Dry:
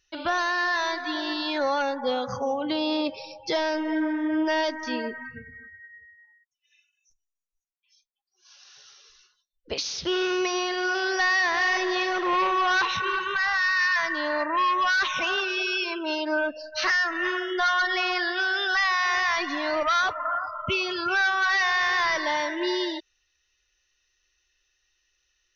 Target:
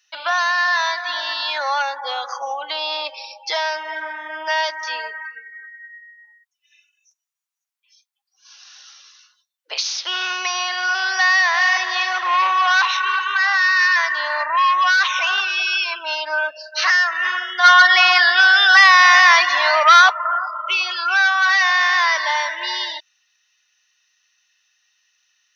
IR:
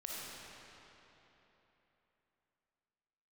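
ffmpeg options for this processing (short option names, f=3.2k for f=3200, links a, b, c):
-filter_complex "[0:a]highpass=f=770:w=0.5412,highpass=f=770:w=1.3066,asplit=3[a][b][c];[a]afade=t=out:st=17.63:d=0.02[d];[b]acontrast=70,afade=t=in:st=17.63:d=0.02,afade=t=out:st=20.09:d=0.02[e];[c]afade=t=in:st=20.09:d=0.02[f];[d][e][f]amix=inputs=3:normalize=0,volume=7.5dB"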